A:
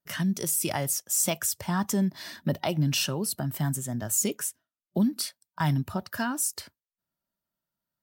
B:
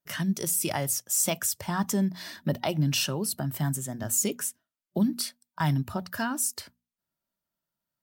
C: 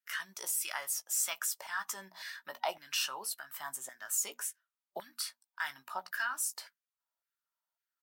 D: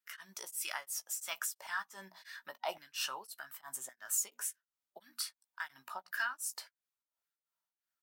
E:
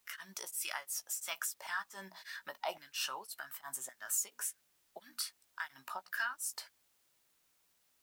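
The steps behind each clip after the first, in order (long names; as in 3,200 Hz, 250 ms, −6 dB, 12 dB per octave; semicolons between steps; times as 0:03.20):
mains-hum notches 60/120/180/240 Hz
double-tracking delay 16 ms −9.5 dB; auto-filter high-pass saw down 1.8 Hz 730–1,800 Hz; level −7 dB
tremolo along a rectified sine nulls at 2.9 Hz
in parallel at +0.5 dB: downward compressor 10 to 1, threshold −46 dBFS, peak gain reduction 17 dB; on the sum: bit-depth reduction 12 bits, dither triangular; level −2.5 dB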